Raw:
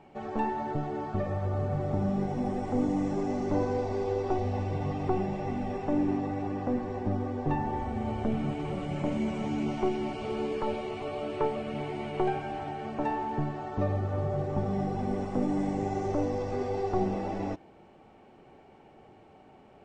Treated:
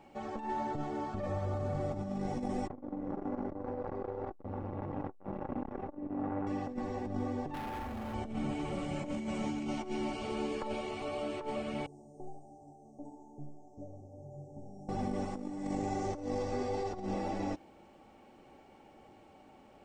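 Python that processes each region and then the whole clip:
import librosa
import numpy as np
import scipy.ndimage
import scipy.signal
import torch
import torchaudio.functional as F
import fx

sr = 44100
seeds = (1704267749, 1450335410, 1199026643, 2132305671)

y = fx.chain(x, sr, fx.lowpass(hz=1300.0, slope=12),
    fx.over_compress(threshold_db=-32.0, ratio=-1.0),
    fx.transformer_sat(knee_hz=490.0), at=(2.67, 6.47))
y = fx.chain(y, sr, fx.overload_stage(gain_db=35.0),
    fx.resample_linear(factor=3), at=(7.54, 8.14))
y = fx.chain(y, sr, fx.cheby1_bandstop(low_hz=780.0, high_hz=5900.0, order=4),
    fx.comb_fb(f0_hz=140.0, decay_s=0.54, harmonics='all', damping=0.0, mix_pct=90), at=(11.86, 14.89))
y = fx.high_shelf(y, sr, hz=5200.0, db=11.0)
y = y + 0.34 * np.pad(y, (int(3.6 * sr / 1000.0), 0))[:len(y)]
y = fx.over_compress(y, sr, threshold_db=-30.0, ratio=-0.5)
y = F.gain(torch.from_numpy(y), -4.5).numpy()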